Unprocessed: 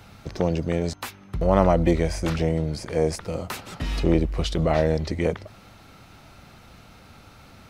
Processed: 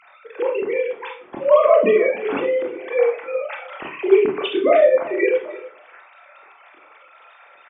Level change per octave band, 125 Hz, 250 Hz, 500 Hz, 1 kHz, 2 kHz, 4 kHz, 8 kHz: under -20 dB, -2.5 dB, +9.0 dB, +4.0 dB, +8.0 dB, +0.5 dB, under -40 dB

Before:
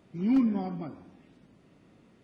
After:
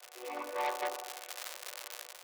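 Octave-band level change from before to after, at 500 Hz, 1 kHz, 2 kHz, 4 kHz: +3.0 dB, +6.5 dB, +10.5 dB, no reading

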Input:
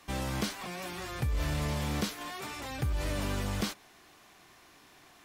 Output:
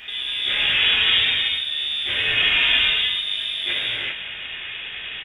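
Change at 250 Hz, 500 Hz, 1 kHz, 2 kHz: -8.0 dB, -0.5 dB, +2.5 dB, +20.5 dB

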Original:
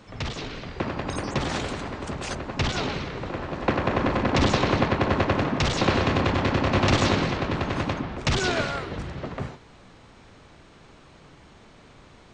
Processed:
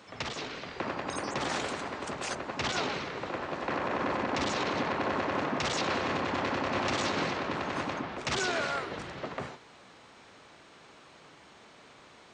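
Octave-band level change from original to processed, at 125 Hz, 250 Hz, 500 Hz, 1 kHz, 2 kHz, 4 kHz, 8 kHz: -15.5 dB, -9.0 dB, -6.5 dB, -4.5 dB, -4.5 dB, -5.5 dB, -3.0 dB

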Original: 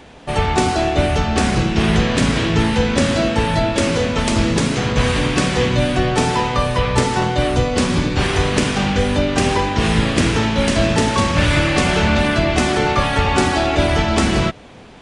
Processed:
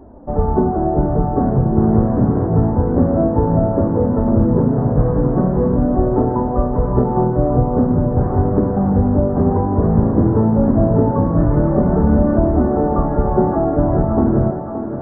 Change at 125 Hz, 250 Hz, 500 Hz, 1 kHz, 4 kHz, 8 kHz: +3.0 dB, +3.5 dB, +1.5 dB, -2.5 dB, under -40 dB, under -40 dB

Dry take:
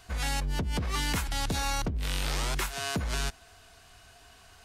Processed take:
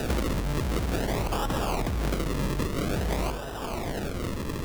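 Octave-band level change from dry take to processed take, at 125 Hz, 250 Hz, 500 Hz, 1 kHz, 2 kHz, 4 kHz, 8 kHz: +4.5 dB, +8.0 dB, +10.0 dB, +3.0 dB, -1.0 dB, -3.5 dB, -4.0 dB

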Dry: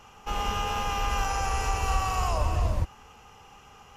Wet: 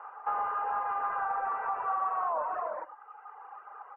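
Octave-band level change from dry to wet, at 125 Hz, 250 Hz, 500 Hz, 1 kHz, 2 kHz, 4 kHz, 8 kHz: under -35 dB, under -15 dB, -3.5 dB, 0.0 dB, -5.5 dB, under -30 dB, under -40 dB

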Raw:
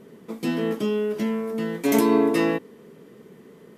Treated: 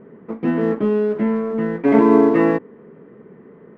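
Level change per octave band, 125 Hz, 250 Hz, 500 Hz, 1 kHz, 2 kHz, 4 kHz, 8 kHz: +6.0 dB, +6.0 dB, +6.0 dB, +6.5 dB, +3.0 dB, under -10 dB, under -20 dB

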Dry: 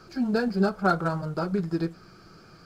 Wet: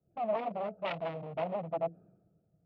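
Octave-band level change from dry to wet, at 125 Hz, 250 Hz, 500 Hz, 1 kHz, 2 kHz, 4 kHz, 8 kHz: -15.5 dB, -18.5 dB, -5.0 dB, -6.0 dB, -13.5 dB, -8.0 dB, no reading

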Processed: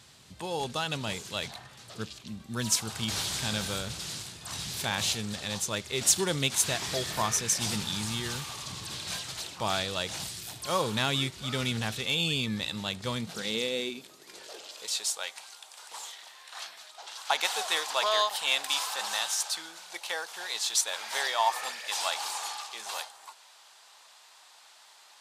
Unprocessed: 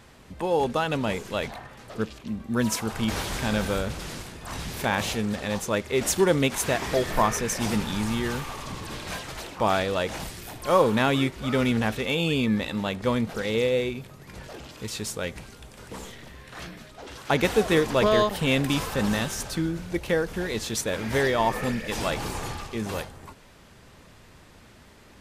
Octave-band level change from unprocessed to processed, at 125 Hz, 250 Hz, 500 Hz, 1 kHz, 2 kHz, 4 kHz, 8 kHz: -7.5 dB, -11.5 dB, -11.0 dB, -4.5 dB, -4.0 dB, +3.0 dB, +4.0 dB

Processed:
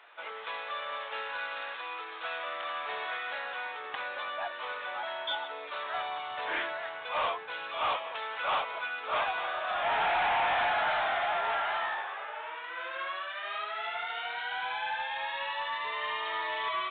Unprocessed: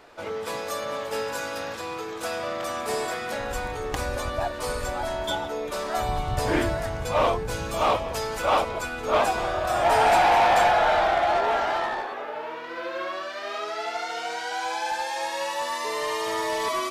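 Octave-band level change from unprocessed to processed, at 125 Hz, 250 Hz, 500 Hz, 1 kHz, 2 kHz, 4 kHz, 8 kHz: under -25 dB, -20.5 dB, -12.5 dB, -7.5 dB, -2.5 dB, -4.0 dB, under -40 dB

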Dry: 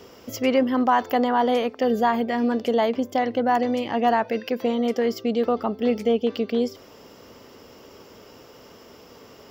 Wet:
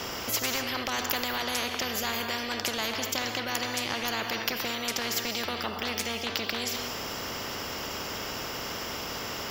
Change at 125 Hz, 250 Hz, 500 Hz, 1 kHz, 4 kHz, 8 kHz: 0.0 dB, -14.0 dB, -13.5 dB, -10.0 dB, +7.5 dB, no reading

